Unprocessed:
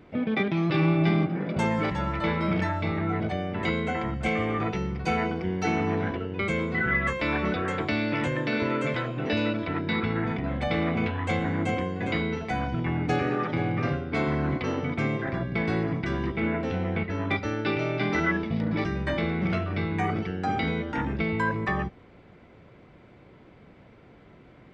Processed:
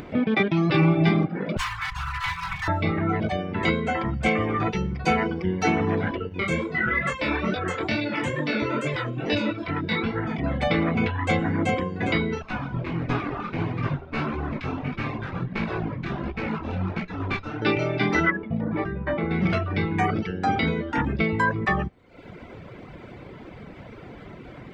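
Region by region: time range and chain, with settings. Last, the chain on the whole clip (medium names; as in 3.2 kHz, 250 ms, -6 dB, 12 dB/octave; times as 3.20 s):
1.57–2.68 s: comb filter that takes the minimum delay 4 ms + elliptic band-stop 130–980 Hz
6.29–10.40 s: treble shelf 6.6 kHz +8.5 dB + chorus 2.3 Hz, delay 20 ms, depth 4.8 ms
12.42–17.62 s: comb filter that takes the minimum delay 0.8 ms + distance through air 170 m + chorus 1.5 Hz, delay 16 ms, depth 7.2 ms
18.30–19.31 s: low-pass 1.5 kHz + bass shelf 350 Hz -4.5 dB
whole clip: reverb removal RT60 0.82 s; upward compressor, threshold -38 dBFS; trim +5.5 dB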